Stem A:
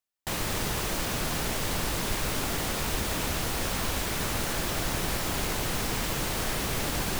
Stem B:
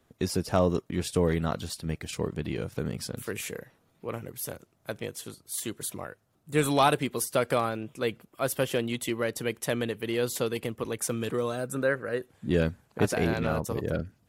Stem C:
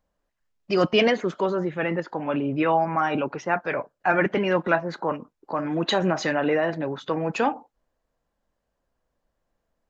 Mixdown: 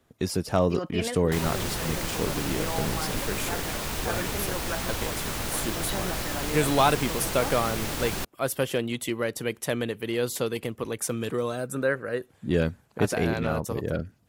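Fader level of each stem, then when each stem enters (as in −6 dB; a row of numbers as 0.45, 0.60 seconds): −1.5, +1.0, −13.0 decibels; 1.05, 0.00, 0.00 seconds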